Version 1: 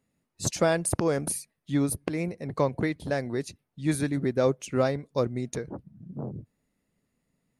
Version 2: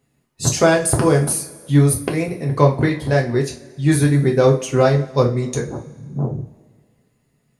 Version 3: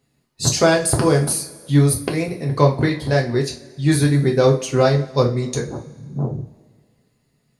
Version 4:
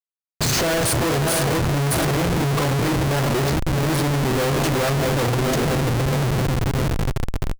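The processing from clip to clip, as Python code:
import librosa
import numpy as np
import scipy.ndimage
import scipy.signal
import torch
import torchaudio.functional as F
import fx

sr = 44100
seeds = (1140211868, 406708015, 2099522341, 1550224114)

y1 = fx.rev_double_slope(x, sr, seeds[0], early_s=0.29, late_s=1.8, knee_db=-21, drr_db=-0.5)
y1 = y1 * 10.0 ** (7.0 / 20.0)
y2 = fx.peak_eq(y1, sr, hz=4400.0, db=7.5, octaves=0.52)
y2 = y2 * 10.0 ** (-1.0 / 20.0)
y3 = fx.reverse_delay_fb(y2, sr, ms=330, feedback_pct=80, wet_db=-11)
y3 = fx.schmitt(y3, sr, flips_db=-25.5)
y3 = y3 * 10.0 ** (-1.5 / 20.0)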